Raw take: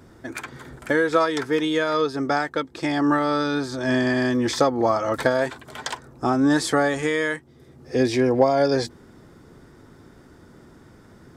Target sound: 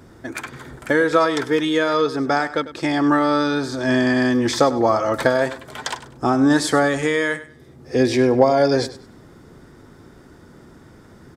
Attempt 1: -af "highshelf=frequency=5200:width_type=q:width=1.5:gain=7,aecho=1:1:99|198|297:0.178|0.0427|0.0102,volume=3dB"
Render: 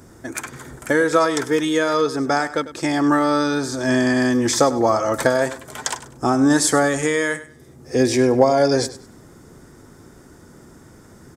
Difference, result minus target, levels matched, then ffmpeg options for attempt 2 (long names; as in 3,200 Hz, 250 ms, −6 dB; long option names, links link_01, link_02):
8,000 Hz band +8.0 dB
-af "aecho=1:1:99|198|297:0.178|0.0427|0.0102,volume=3dB"